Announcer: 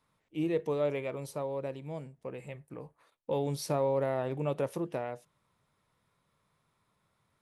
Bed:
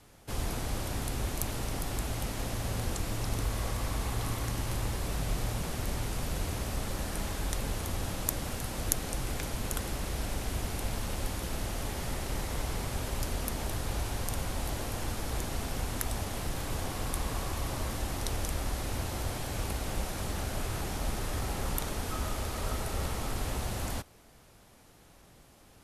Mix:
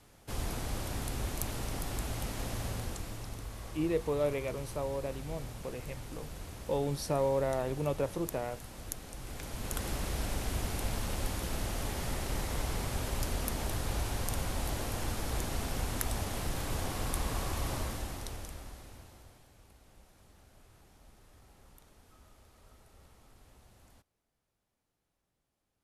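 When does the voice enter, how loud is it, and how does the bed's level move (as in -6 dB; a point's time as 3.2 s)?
3.40 s, -0.5 dB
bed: 2.62 s -2.5 dB
3.41 s -11 dB
9.14 s -11 dB
9.89 s -0.5 dB
17.75 s -0.5 dB
19.56 s -26 dB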